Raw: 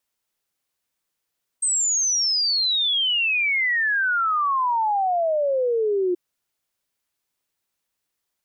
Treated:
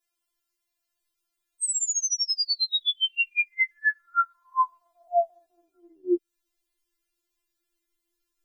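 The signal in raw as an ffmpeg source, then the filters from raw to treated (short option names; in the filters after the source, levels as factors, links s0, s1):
-f lavfi -i "aevalsrc='0.119*clip(min(t,4.53-t)/0.01,0,1)*sin(2*PI*8400*4.53/log(350/8400)*(exp(log(350/8400)*t/4.53)-1))':d=4.53:s=44100"
-af "asubboost=boost=10:cutoff=220,acompressor=threshold=0.0708:ratio=6,afftfilt=real='re*4*eq(mod(b,16),0)':imag='im*4*eq(mod(b,16),0)':win_size=2048:overlap=0.75"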